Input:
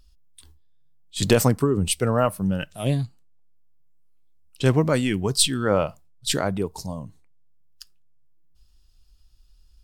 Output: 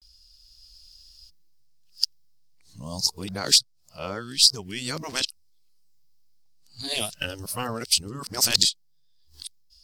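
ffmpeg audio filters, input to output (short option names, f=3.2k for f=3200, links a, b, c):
-af "areverse,highshelf=f=2.2k:g=12,dynaudnorm=f=120:g=9:m=5.5dB,afftfilt=real='re*lt(hypot(re,im),0.501)':imag='im*lt(hypot(re,im),0.501)':win_size=1024:overlap=0.75,equalizer=f=4.9k:t=o:w=0.68:g=15,volume=-7dB"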